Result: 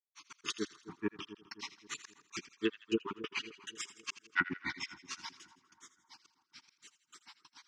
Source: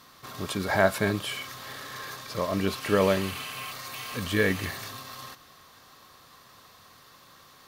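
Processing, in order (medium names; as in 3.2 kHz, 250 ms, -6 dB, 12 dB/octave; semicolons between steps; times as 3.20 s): random holes in the spectrogram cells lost 30%; cabinet simulation 260–6700 Hz, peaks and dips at 300 Hz +4 dB, 640 Hz +10 dB, 1.1 kHz -4 dB, 2.5 kHz +9 dB, 3.9 kHz -5 dB, 6.1 kHz +8 dB; low-pass that closes with the level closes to 820 Hz, closed at -18.5 dBFS; Chebyshev band-stop 390–890 Hz, order 5; treble shelf 4.3 kHz +11.5 dB; granulator 97 ms, grains 6.9 per s, spray 11 ms, pitch spread up and down by 3 st; trance gate ".xx.xx..xx.x." 139 bpm -60 dB; two-band feedback delay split 1.4 kHz, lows 264 ms, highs 82 ms, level -14.5 dB; low-pass that closes with the level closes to 2.4 kHz, closed at -25.5 dBFS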